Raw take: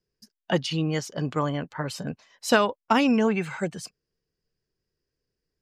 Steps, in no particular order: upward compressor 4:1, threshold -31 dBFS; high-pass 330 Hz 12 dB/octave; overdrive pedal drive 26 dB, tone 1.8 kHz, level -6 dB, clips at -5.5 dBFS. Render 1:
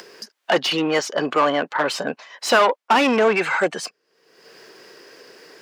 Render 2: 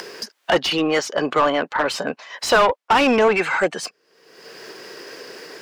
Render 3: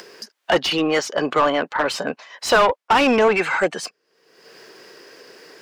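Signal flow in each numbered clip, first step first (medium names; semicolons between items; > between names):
overdrive pedal > upward compressor > high-pass; upward compressor > high-pass > overdrive pedal; high-pass > overdrive pedal > upward compressor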